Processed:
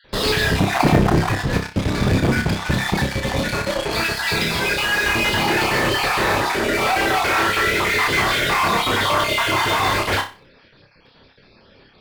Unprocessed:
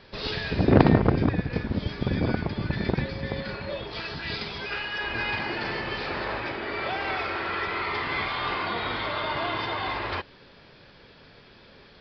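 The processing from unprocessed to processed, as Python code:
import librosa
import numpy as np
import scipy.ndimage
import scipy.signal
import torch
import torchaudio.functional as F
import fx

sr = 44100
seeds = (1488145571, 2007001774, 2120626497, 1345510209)

p1 = fx.spec_dropout(x, sr, seeds[0], share_pct=33)
p2 = fx.fuzz(p1, sr, gain_db=40.0, gate_db=-41.0)
p3 = p1 + (p2 * 10.0 ** (-8.0 / 20.0))
p4 = fx.room_flutter(p3, sr, wall_m=5.2, rt60_s=0.31)
y = p4 * 10.0 ** (1.0 / 20.0)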